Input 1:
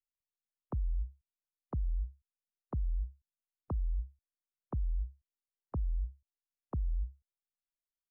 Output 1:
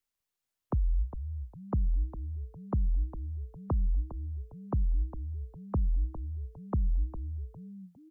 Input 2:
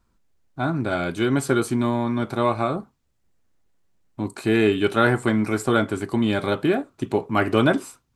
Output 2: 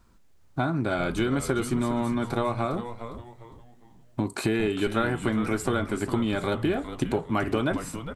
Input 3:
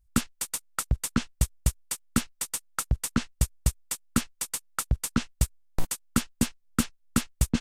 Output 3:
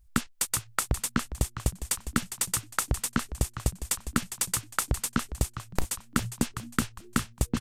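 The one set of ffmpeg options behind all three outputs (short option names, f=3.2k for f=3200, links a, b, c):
-filter_complex "[0:a]acompressor=threshold=-31dB:ratio=6,asplit=2[a][b];[b]asplit=4[c][d][e][f];[c]adelay=406,afreqshift=-120,volume=-10dB[g];[d]adelay=812,afreqshift=-240,volume=-19.4dB[h];[e]adelay=1218,afreqshift=-360,volume=-28.7dB[i];[f]adelay=1624,afreqshift=-480,volume=-38.1dB[j];[g][h][i][j]amix=inputs=4:normalize=0[k];[a][k]amix=inputs=2:normalize=0,volume=7.5dB"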